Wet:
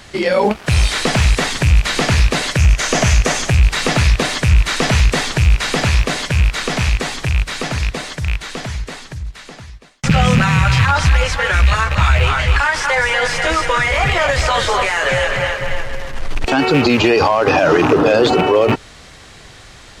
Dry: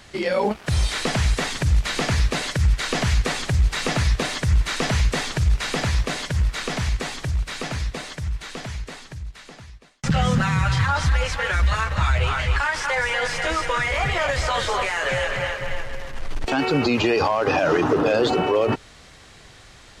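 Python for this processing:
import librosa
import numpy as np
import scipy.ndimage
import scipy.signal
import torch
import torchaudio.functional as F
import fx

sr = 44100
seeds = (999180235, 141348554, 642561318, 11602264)

p1 = fx.rattle_buzz(x, sr, strikes_db=-22.0, level_db=-17.0)
p2 = np.clip(10.0 ** (13.0 / 20.0) * p1, -1.0, 1.0) / 10.0 ** (13.0 / 20.0)
p3 = p1 + (p2 * librosa.db_to_amplitude(-9.0))
p4 = fx.graphic_eq_31(p3, sr, hz=(630, 4000, 6300), db=(5, -4, 8), at=(2.58, 3.5))
y = p4 * librosa.db_to_amplitude(4.5)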